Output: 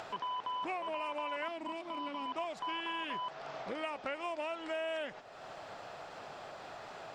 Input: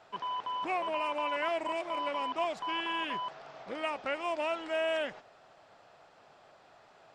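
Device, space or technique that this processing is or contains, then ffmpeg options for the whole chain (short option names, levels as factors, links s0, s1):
upward and downward compression: -filter_complex "[0:a]acompressor=mode=upward:threshold=0.0112:ratio=2.5,acompressor=threshold=0.0126:ratio=4,asettb=1/sr,asplit=3[s0][s1][s2];[s0]atrim=end=1.484[s3];[s1]atrim=start=1.48:end=2.26,asetpts=PTS-STARTPTS,afade=t=in:d=0.004:c=qsin,afade=t=out:st=0.776:d=0.004:c=qsin,equalizer=f=125:t=o:w=1:g=-4,equalizer=f=250:t=o:w=1:g=11,equalizer=f=500:t=o:w=1:g=-9,equalizer=f=2000:t=o:w=1:g=-5,equalizer=f=4000:t=o:w=1:g=3,equalizer=f=8000:t=o:w=1:g=-6[s4];[s2]atrim=start=2.256[s5];[s3][s4]acrossfade=d=0.004:c1=hsin:c2=qsin[s6];[s6][s5]acrossfade=d=0.004:c1=qsin:c2=hsin,volume=1.26"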